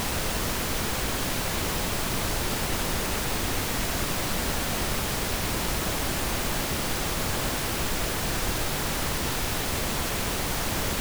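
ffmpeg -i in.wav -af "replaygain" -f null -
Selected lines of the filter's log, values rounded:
track_gain = +13.2 dB
track_peak = 0.147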